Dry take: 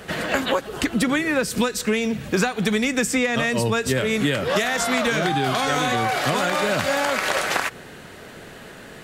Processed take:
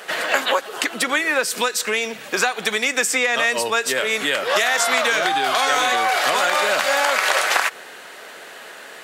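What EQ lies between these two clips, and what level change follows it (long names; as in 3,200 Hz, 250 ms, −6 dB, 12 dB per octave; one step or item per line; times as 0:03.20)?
high-pass filter 610 Hz 12 dB per octave
+5.0 dB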